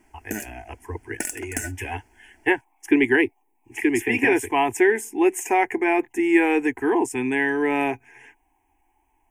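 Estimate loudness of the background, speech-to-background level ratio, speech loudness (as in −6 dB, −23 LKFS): −32.5 LKFS, 11.0 dB, −21.5 LKFS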